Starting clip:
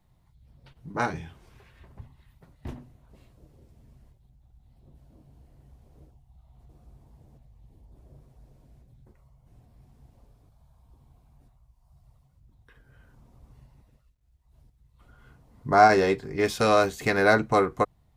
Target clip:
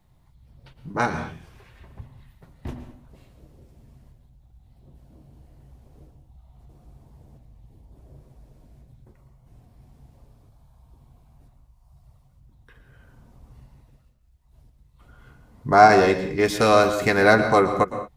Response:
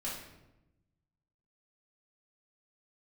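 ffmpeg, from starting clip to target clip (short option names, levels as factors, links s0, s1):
-filter_complex "[0:a]asplit=2[s0][s1];[1:a]atrim=start_sample=2205,afade=t=out:st=0.17:d=0.01,atrim=end_sample=7938,adelay=114[s2];[s1][s2]afir=irnorm=-1:irlink=0,volume=0.299[s3];[s0][s3]amix=inputs=2:normalize=0,volume=1.58"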